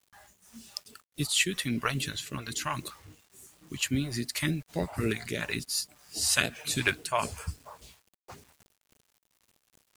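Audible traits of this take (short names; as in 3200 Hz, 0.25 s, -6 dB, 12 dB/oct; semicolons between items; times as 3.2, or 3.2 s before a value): phasing stages 2, 3.6 Hz, lowest notch 230–1100 Hz; a quantiser's noise floor 10-bit, dither none; noise-modulated level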